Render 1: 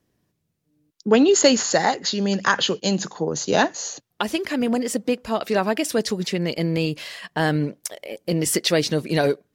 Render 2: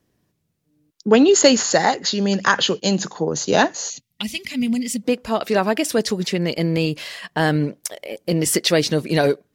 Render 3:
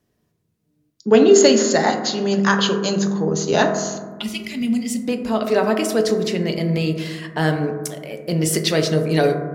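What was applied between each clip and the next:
time-frequency box 3.90–5.03 s, 270–1900 Hz -17 dB; trim +2.5 dB
reverberation RT60 1.4 s, pre-delay 4 ms, DRR 3.5 dB; trim -2.5 dB

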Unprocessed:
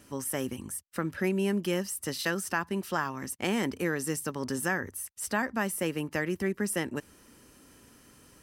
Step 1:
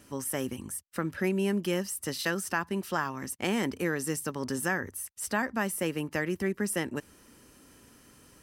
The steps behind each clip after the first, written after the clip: no audible change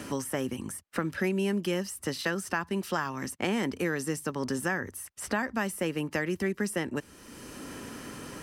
treble shelf 11 kHz -9 dB; three bands compressed up and down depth 70%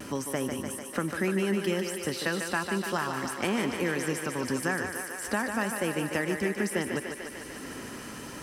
vibrato 0.36 Hz 14 cents; on a send: thinning echo 148 ms, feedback 80%, high-pass 260 Hz, level -6 dB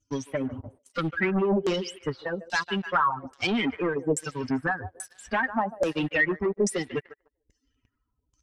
expander on every frequency bin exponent 3; waveshaping leveller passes 3; LFO low-pass saw down 1.2 Hz 470–7000 Hz; trim +1.5 dB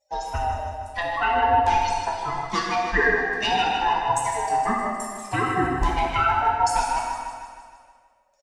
split-band scrambler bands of 500 Hz; on a send: feedback delay 155 ms, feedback 57%, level -9 dB; on the sum: plate-style reverb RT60 1.5 s, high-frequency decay 0.9×, DRR -1.5 dB

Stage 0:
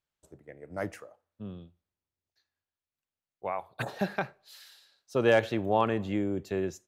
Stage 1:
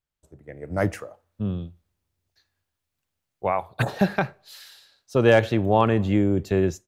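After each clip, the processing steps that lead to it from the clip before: bass shelf 130 Hz +12 dB; level rider gain up to 13 dB; trim -3.5 dB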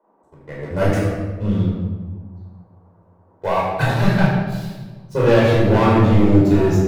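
waveshaping leveller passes 3; band noise 210–1000 Hz -56 dBFS; simulated room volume 970 m³, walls mixed, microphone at 4.9 m; trim -12 dB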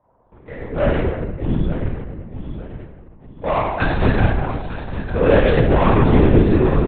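on a send: feedback delay 901 ms, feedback 29%, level -10.5 dB; on the sum: LPC vocoder at 8 kHz whisper

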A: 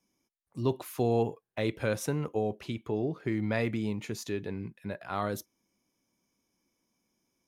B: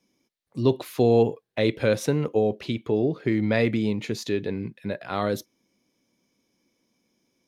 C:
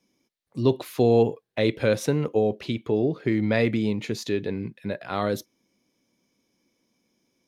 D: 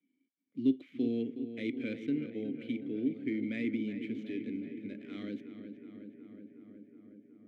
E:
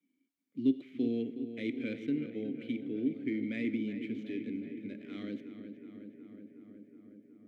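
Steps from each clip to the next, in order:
graphic EQ 125/250/500/2000/4000 Hz +5/+6/+8/+5/+9 dB
no audible change
median filter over 9 samples; vowel filter i; filtered feedback delay 368 ms, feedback 79%, low-pass 2.7 kHz, level -10 dB
reverberation RT60 0.40 s, pre-delay 45 ms, DRR 16.5 dB

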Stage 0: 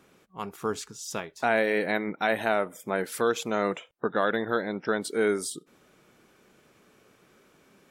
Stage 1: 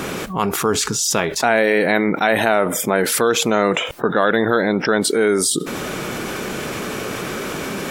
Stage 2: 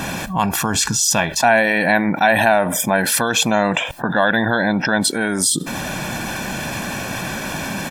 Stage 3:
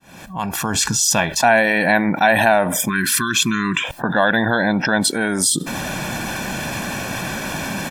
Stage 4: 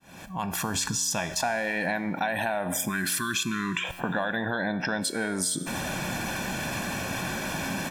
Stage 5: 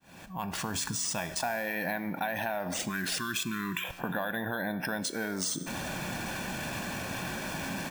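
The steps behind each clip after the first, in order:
level flattener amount 70%; trim +7 dB
comb 1.2 ms, depth 76%
fade-in on the opening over 0.84 s; spectral selection erased 2.89–3.84 s, 420–970 Hz
compression, threshold -19 dBFS, peak gain reduction 10 dB; feedback comb 90 Hz, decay 1.4 s, harmonics all, mix 60%; trim +1.5 dB
careless resampling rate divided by 3×, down none, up hold; trim -4.5 dB

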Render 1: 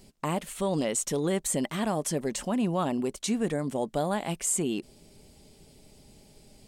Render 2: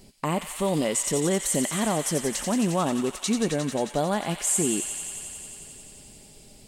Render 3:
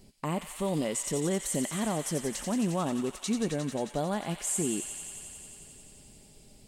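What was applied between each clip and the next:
feedback echo behind a high-pass 89 ms, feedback 85%, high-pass 1.7 kHz, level -6 dB; trim +3 dB
bass shelf 320 Hz +4 dB; trim -7 dB

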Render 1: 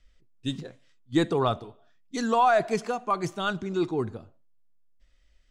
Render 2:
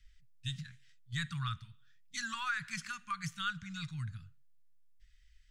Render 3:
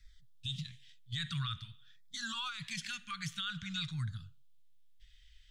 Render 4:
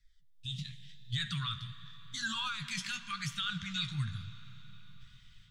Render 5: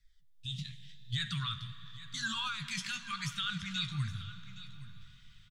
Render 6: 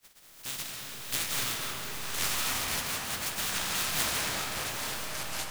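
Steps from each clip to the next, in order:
elliptic band-stop 150–1600 Hz, stop band 60 dB; dynamic bell 1.2 kHz, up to +7 dB, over -50 dBFS, Q 1.7; compression 2:1, threshold -37 dBFS, peak gain reduction 7.5 dB
peaking EQ 3.4 kHz +11 dB 0.64 oct; peak limiter -30.5 dBFS, peak gain reduction 11.5 dB; LFO notch saw down 0.51 Hz 400–3100 Hz; trim +2.5 dB
level rider gain up to 12 dB; flange 0.9 Hz, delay 6.9 ms, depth 9.5 ms, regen +37%; reverberation RT60 4.8 s, pre-delay 8 ms, DRR 12.5 dB; trim -5.5 dB
delay 818 ms -16 dB
spectral contrast reduction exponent 0.12; ever faster or slower copies 500 ms, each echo -7 st, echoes 2; algorithmic reverb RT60 3.9 s, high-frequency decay 0.3×, pre-delay 115 ms, DRR 0.5 dB; trim +2.5 dB

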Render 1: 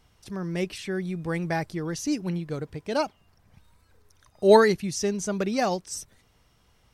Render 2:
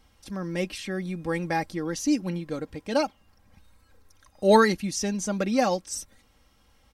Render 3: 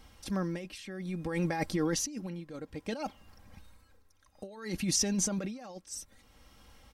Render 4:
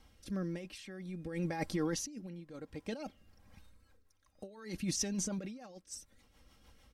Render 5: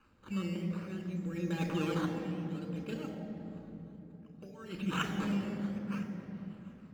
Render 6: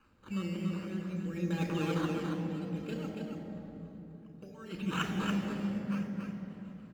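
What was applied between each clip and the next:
comb 3.7 ms, depth 59%
compressor with a negative ratio -31 dBFS, ratio -1; tremolo 0.6 Hz, depth 80%
rotary cabinet horn 1 Hz, later 6.7 Hz, at 3.36 s; trim -3.5 dB
decimation with a swept rate 12×, swing 100% 0.59 Hz; reverberation RT60 3.5 s, pre-delay 3 ms, DRR 4.5 dB; trim -6 dB
delay 282 ms -5 dB

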